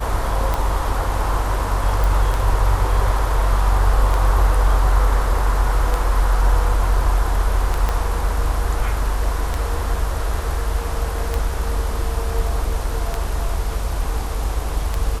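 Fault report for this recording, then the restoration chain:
tick 33 1/3 rpm
2.04 s: pop
7.89 s: pop -8 dBFS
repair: de-click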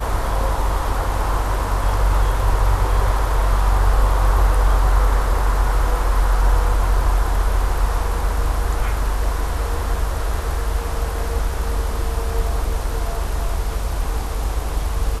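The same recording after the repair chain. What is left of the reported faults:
7.89 s: pop

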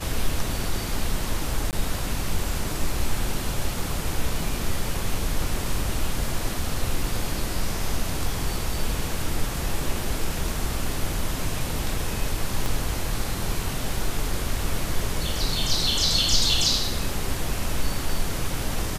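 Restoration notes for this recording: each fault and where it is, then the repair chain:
1.71–1.73 s: dropout 18 ms
12.66 s: pop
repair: de-click; interpolate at 1.71 s, 18 ms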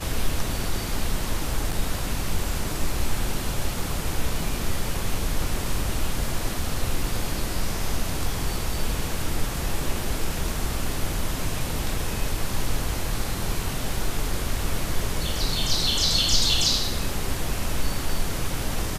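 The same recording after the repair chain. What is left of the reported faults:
12.66 s: pop

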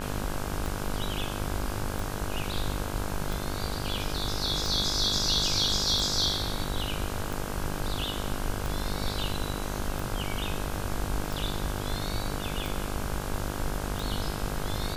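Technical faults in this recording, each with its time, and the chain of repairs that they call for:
buzz 50 Hz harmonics 33 -35 dBFS
tick 45 rpm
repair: de-click; de-hum 50 Hz, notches 33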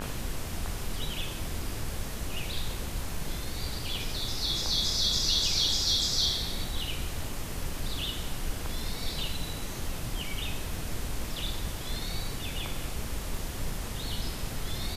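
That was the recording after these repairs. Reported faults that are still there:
nothing left

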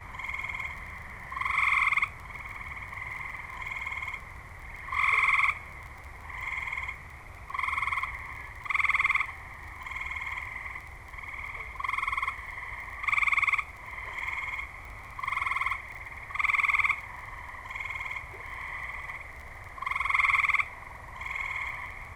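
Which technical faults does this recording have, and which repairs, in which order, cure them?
crackle 21 per s -38 dBFS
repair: de-click

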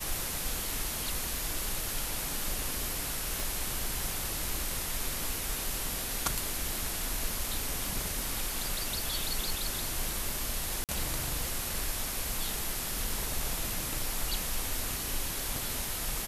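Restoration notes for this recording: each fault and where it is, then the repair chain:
3.40 s: pop
10.84–10.89 s: dropout 48 ms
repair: de-click; interpolate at 10.84 s, 48 ms

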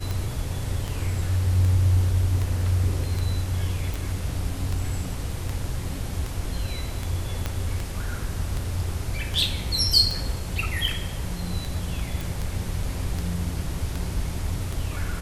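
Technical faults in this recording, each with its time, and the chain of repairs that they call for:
tick 78 rpm
3.94 s: pop
7.46 s: pop -12 dBFS
12.21 s: pop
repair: de-click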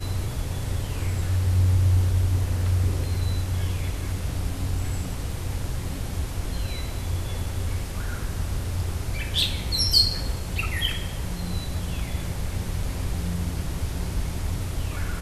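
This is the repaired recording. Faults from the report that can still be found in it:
7.46 s: pop

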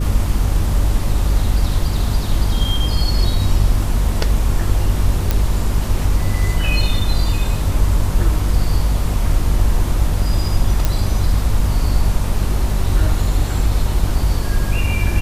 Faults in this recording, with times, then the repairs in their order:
hum 50 Hz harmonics 6 -20 dBFS
5.31 s: pop
10.85 s: pop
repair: de-click; de-hum 50 Hz, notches 6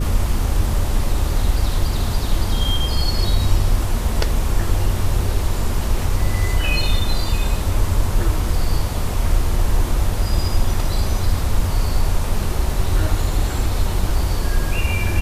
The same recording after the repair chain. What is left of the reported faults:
nothing left

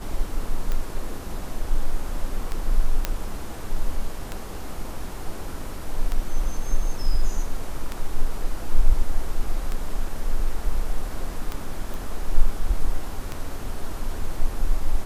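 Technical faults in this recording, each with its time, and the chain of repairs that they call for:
tick 33 1/3 rpm -14 dBFS
3.05 s: pop -8 dBFS
11.94 s: pop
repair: de-click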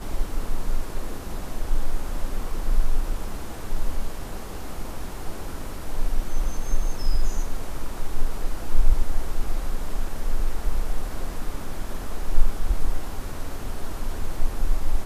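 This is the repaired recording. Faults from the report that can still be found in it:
nothing left

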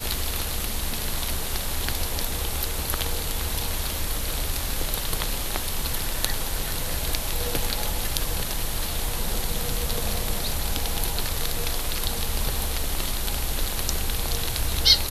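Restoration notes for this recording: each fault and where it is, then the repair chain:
0.93 s: dropout 2.3 ms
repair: interpolate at 0.93 s, 2.3 ms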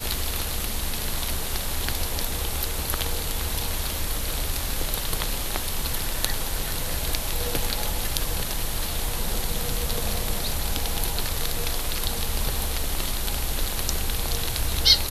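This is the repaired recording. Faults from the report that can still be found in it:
nothing left

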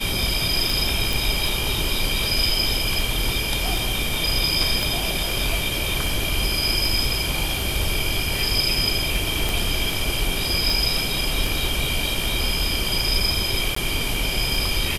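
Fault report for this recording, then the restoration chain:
tick 78 rpm
1.13 s: pop
4.83 s: pop
9.49 s: pop
13.75–13.76 s: dropout 14 ms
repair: de-click; interpolate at 13.75 s, 14 ms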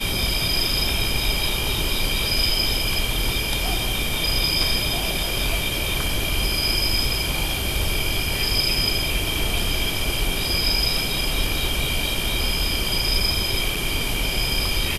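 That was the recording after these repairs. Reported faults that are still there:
4.83 s: pop

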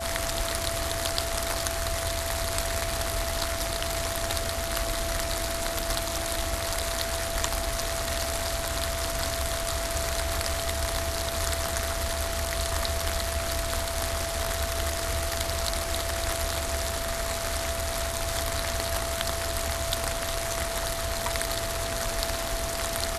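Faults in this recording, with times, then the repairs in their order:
whine 670 Hz -33 dBFS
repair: band-stop 670 Hz, Q 30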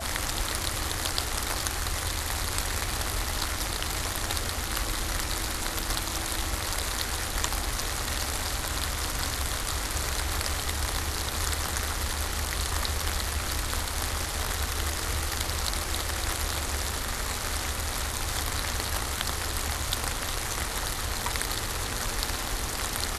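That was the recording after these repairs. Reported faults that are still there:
nothing left

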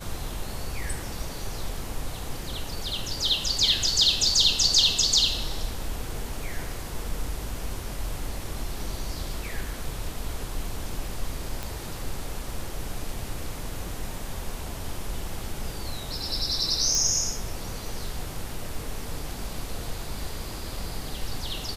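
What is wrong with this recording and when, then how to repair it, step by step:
11.63 s: pop
16.95 s: pop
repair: de-click

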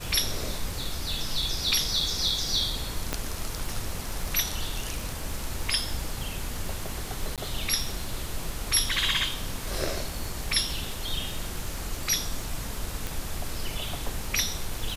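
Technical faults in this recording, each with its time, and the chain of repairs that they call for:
crackle 54 per s -34 dBFS
3.13 s: pop -11 dBFS
7.36–7.38 s: dropout 17 ms
13.07 s: pop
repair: de-click; interpolate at 7.36 s, 17 ms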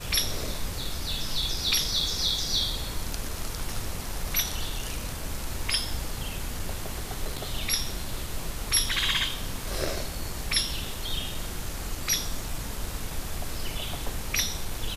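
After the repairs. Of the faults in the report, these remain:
3.13 s: pop

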